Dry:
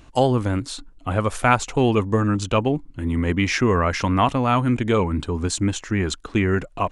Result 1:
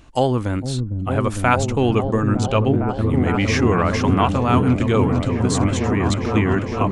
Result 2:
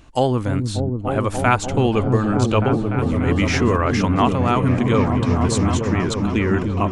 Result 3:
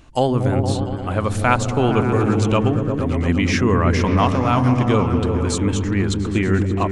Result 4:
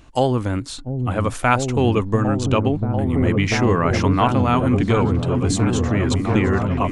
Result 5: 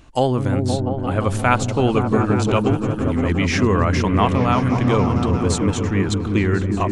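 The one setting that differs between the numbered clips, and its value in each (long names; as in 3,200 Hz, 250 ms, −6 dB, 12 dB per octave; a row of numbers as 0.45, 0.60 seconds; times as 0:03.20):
echo whose low-pass opens from repeat to repeat, delay time: 455, 294, 116, 692, 174 milliseconds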